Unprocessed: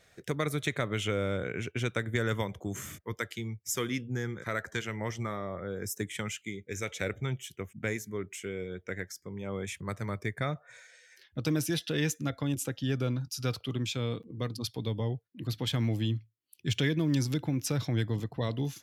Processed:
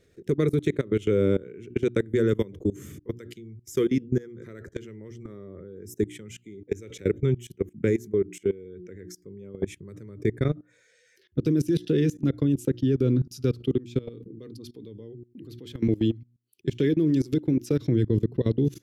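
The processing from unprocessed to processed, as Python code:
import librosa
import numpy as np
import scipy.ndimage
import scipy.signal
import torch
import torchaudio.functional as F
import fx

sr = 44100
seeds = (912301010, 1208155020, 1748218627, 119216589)

y = fx.highpass(x, sr, hz=110.0, slope=6, at=(0.68, 2.54))
y = fx.low_shelf(y, sr, hz=160.0, db=-11.0, at=(14.09, 17.85))
y = fx.low_shelf_res(y, sr, hz=540.0, db=11.0, q=3.0)
y = fx.hum_notches(y, sr, base_hz=60, count=6)
y = fx.level_steps(y, sr, step_db=21)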